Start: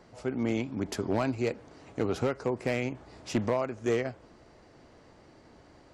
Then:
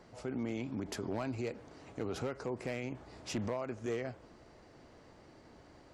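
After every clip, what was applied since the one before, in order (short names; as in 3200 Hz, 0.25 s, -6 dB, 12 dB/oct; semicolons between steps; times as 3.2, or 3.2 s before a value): limiter -27 dBFS, peak gain reduction 7.5 dB; gain -2 dB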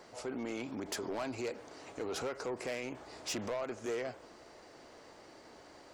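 tone controls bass -13 dB, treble +4 dB; soft clip -36 dBFS, distortion -13 dB; gain +5 dB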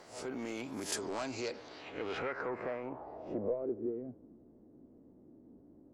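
spectral swells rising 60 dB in 0.35 s; low-pass sweep 16000 Hz -> 250 Hz, 0.5–4.07; gain -1.5 dB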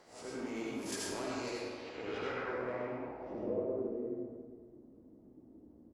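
echo 0.551 s -19.5 dB; reverb RT60 1.4 s, pre-delay 66 ms, DRR -5 dB; gain -6.5 dB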